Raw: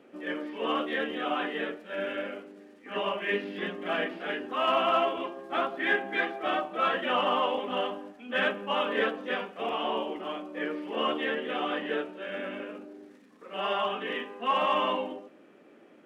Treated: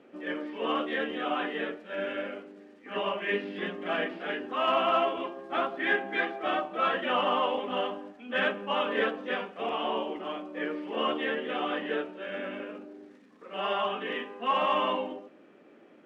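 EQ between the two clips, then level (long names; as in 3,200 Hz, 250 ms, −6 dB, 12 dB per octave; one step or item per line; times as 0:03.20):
high-frequency loss of the air 53 metres
0.0 dB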